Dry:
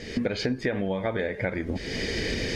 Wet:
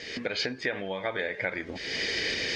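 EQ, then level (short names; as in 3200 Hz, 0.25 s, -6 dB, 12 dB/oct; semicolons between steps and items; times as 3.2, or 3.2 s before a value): air absorption 150 m; tilt +4 dB/oct; bell 220 Hz -6 dB 0.2 oct; 0.0 dB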